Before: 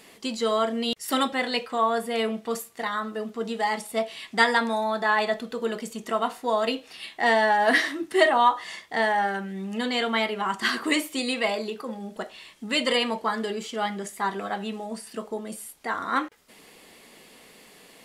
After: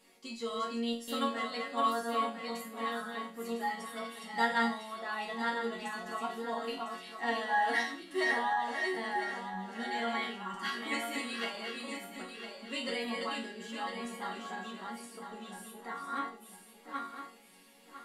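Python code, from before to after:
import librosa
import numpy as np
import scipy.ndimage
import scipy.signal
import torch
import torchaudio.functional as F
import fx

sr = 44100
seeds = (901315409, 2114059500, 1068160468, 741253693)

y = fx.reverse_delay_fb(x, sr, ms=502, feedback_pct=53, wet_db=-3)
y = fx.resonator_bank(y, sr, root=54, chord='major', decay_s=0.38)
y = y * 10.0 ** (5.5 / 20.0)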